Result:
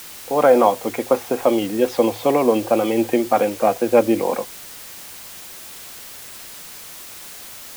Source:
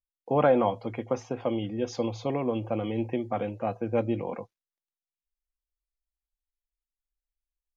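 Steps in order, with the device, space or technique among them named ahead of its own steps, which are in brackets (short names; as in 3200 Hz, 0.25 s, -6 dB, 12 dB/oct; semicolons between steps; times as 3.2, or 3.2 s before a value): dictaphone (BPF 290–3200 Hz; AGC gain up to 11 dB; wow and flutter; white noise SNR 17 dB); gain +3 dB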